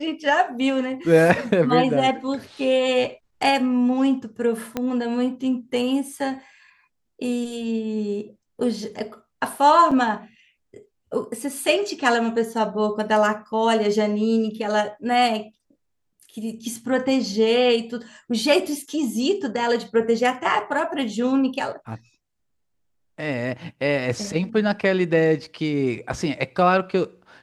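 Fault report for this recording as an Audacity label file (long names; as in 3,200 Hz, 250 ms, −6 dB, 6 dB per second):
4.770000	4.770000	click −11 dBFS
9.910000	9.910000	drop-out 5 ms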